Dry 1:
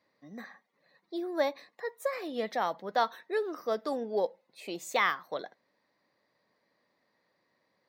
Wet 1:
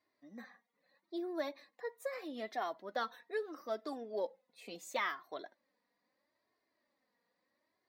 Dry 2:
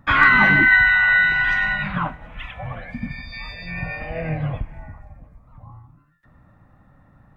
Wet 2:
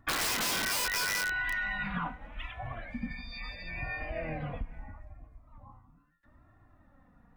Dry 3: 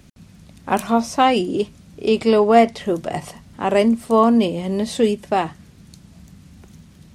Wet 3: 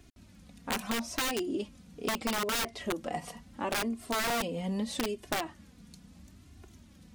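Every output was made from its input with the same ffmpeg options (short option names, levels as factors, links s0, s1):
-af "flanger=delay=2.8:depth=1.4:regen=1:speed=0.76:shape=sinusoidal,aeval=exprs='(mod(5.01*val(0)+1,2)-1)/5.01':c=same,acompressor=threshold=0.0562:ratio=5,volume=0.596"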